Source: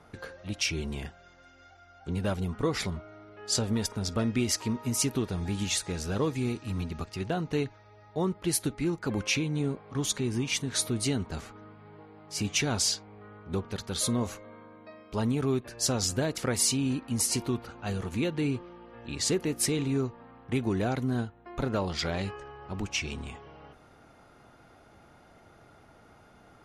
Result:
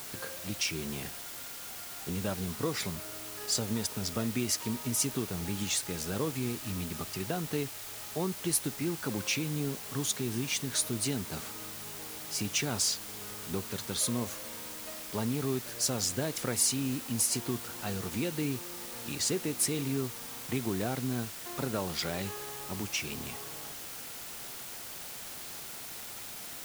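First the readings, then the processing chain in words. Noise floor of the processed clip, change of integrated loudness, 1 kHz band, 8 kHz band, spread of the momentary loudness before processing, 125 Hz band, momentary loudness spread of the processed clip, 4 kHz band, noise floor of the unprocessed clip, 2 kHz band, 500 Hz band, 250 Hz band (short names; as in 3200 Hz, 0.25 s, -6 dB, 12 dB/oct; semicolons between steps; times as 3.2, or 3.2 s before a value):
-43 dBFS, -3.0 dB, -2.5 dB, 0.0 dB, 14 LU, -5.0 dB, 11 LU, -1.5 dB, -57 dBFS, -2.0 dB, -4.0 dB, -4.0 dB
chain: HPF 98 Hz 24 dB/oct; high shelf 9500 Hz +11 dB; in parallel at +2.5 dB: compressor, threshold -36 dBFS, peak gain reduction 17 dB; on the sum: requantised 6-bit, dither triangular; gain -7 dB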